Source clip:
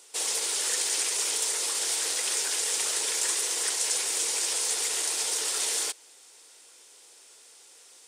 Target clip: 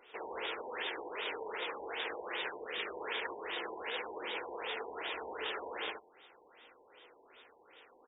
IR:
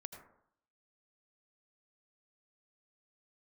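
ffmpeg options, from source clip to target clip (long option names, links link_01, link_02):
-filter_complex "[0:a]flanger=delay=3.7:depth=2.5:regen=84:speed=1.5:shape=triangular,asplit=2[link_01][link_02];[link_02]acompressor=threshold=-47dB:ratio=6,volume=-3dB[link_03];[link_01][link_03]amix=inputs=2:normalize=0,asettb=1/sr,asplit=3[link_04][link_05][link_06];[link_04]atrim=end=2.504[link_07];[link_05]atrim=start=2.5:end=2.94,asetpts=PTS-STARTPTS,afade=type=in:duration=0.004:curve=qsin,afade=type=out:start_time=0.436:duration=0.004:curve=qsin,equalizer=frequency=880:width_type=o:width=0.46:gain=-8.5[link_08];[link_06]atrim=start=2.936[link_09];[link_07][link_08]acrossfade=duration=0.004:curve1=hsin:curve2=qsin[link_10];[link_10][link_09]acrossfade=duration=0.004:curve1=qsin:curve2=hsin,asplit=2[link_11][link_12];[link_12]aecho=0:1:74|148|222:0.631|0.0946|0.0142[link_13];[link_11][link_13]amix=inputs=2:normalize=0,afftfilt=real='re*lt(b*sr/1024,990*pow(3800/990,0.5+0.5*sin(2*PI*2.6*pts/sr)))':imag='im*lt(b*sr/1024,990*pow(3800/990,0.5+0.5*sin(2*PI*2.6*pts/sr)))':win_size=1024:overlap=0.75,volume=2dB"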